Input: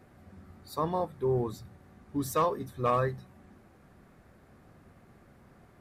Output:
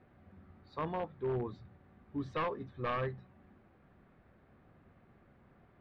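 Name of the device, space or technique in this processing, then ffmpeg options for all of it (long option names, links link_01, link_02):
synthesiser wavefolder: -af "aeval=exprs='0.0794*(abs(mod(val(0)/0.0794+3,4)-2)-1)':channel_layout=same,lowpass=frequency=3500:width=0.5412,lowpass=frequency=3500:width=1.3066,volume=-6dB"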